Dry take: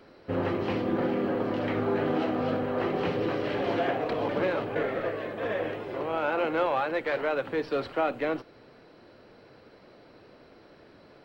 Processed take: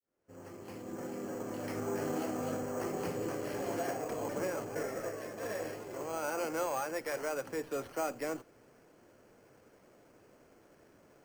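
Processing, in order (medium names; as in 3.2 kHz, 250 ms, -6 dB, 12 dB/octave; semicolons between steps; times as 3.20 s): fade-in on the opening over 2.06 s; 2.62–5.22 s: treble shelf 4.5 kHz -9 dB; careless resampling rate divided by 6×, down filtered, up hold; trim -8 dB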